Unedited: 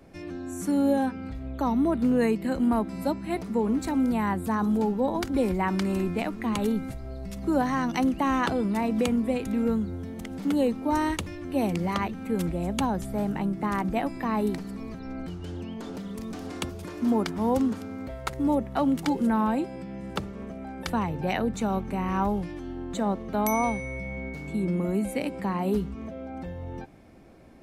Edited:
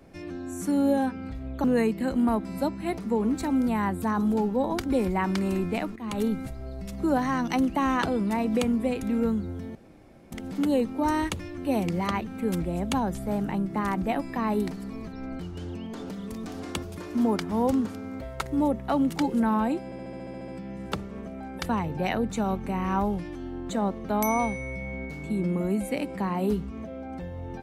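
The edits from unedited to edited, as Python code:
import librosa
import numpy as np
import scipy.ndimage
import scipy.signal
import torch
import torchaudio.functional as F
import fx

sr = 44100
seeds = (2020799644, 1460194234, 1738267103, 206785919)

y = fx.edit(x, sr, fx.cut(start_s=1.64, length_s=0.44),
    fx.fade_in_from(start_s=6.4, length_s=0.28, floor_db=-15.5),
    fx.insert_room_tone(at_s=10.19, length_s=0.57),
    fx.stutter(start_s=19.72, slice_s=0.07, count=10), tone=tone)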